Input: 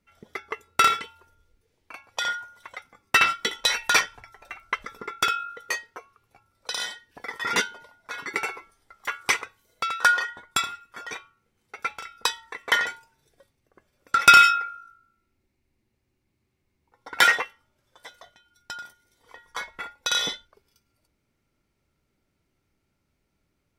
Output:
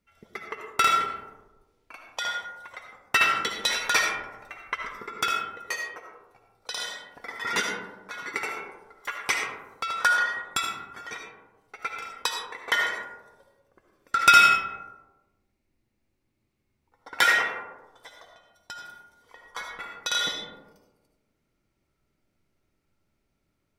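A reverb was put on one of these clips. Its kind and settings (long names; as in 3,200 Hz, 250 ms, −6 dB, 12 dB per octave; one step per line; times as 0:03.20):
comb and all-pass reverb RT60 1.2 s, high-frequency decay 0.3×, pre-delay 35 ms, DRR 2 dB
level −3.5 dB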